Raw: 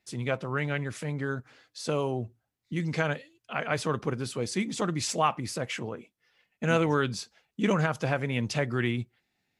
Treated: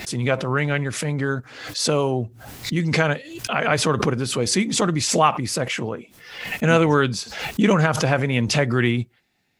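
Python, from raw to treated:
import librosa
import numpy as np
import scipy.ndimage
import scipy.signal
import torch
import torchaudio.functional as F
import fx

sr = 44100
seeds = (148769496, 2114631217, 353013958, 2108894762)

y = fx.pre_swell(x, sr, db_per_s=64.0)
y = y * 10.0 ** (8.0 / 20.0)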